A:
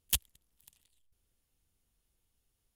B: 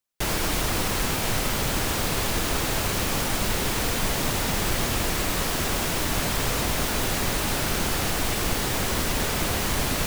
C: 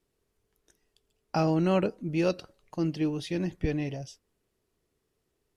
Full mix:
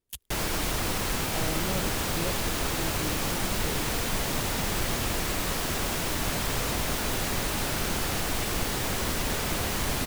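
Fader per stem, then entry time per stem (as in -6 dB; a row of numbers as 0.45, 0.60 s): -10.5, -3.5, -10.0 dB; 0.00, 0.10, 0.00 s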